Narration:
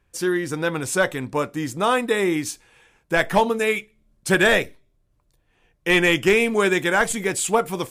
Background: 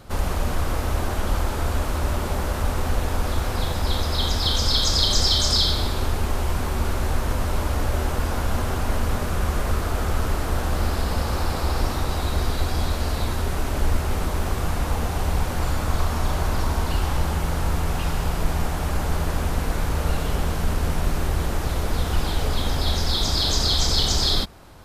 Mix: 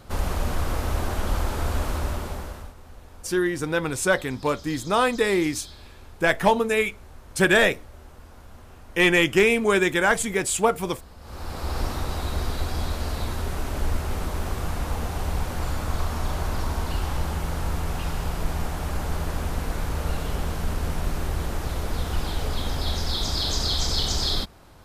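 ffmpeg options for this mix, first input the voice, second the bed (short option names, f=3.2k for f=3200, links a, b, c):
-filter_complex "[0:a]adelay=3100,volume=-1dB[a];[1:a]volume=16.5dB,afade=t=out:st=1.9:d=0.84:silence=0.0944061,afade=t=in:st=11.2:d=0.6:silence=0.11885[b];[a][b]amix=inputs=2:normalize=0"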